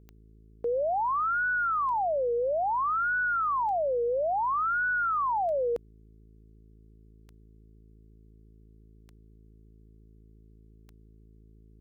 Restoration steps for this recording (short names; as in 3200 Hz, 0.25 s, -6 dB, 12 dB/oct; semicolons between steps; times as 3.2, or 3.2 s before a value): de-click; de-hum 54.2 Hz, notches 8